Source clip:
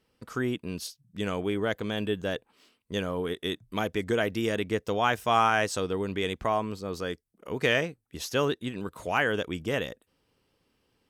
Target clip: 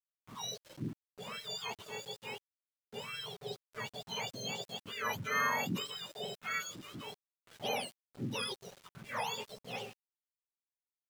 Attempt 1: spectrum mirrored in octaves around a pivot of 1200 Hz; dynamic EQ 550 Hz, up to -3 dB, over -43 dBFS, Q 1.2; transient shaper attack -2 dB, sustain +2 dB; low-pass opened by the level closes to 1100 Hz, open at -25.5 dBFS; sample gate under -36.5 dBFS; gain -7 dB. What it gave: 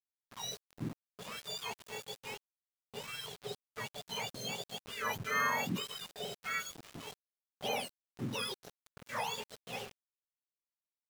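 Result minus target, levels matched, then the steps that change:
sample gate: distortion +8 dB
change: sample gate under -43.5 dBFS

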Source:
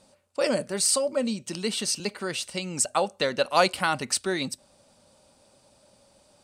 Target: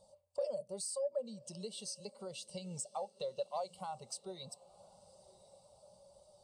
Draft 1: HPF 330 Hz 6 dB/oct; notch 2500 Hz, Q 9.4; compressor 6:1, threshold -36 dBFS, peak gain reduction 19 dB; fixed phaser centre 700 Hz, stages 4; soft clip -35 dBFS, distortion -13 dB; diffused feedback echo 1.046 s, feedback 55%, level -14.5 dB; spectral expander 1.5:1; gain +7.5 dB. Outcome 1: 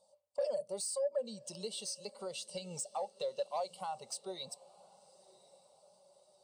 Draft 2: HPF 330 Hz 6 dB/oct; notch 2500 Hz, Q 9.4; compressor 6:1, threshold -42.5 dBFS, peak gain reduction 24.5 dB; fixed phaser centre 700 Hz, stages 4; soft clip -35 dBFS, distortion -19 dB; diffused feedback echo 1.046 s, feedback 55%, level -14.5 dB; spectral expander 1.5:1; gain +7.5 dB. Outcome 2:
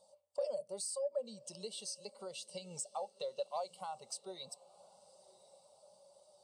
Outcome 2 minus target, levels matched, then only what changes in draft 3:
250 Hz band -5.0 dB
remove: HPF 330 Hz 6 dB/oct

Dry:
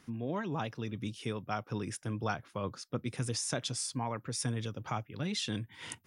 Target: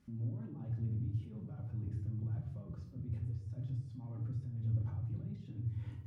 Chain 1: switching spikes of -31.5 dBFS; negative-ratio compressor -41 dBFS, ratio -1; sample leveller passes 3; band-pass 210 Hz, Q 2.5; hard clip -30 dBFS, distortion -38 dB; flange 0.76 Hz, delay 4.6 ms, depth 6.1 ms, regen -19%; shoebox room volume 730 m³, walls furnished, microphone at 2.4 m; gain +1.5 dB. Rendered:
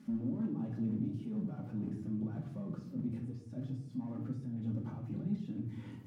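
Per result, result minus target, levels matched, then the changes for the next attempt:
250 Hz band +9.5 dB; switching spikes: distortion +10 dB
change: band-pass 77 Hz, Q 2.5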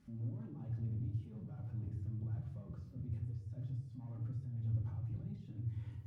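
switching spikes: distortion +10 dB
change: switching spikes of -42 dBFS

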